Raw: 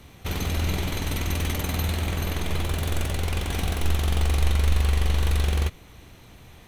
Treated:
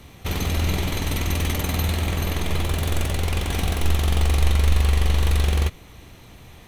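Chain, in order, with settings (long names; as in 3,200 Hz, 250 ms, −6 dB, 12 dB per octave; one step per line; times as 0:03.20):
notch filter 1,500 Hz, Q 21
level +3 dB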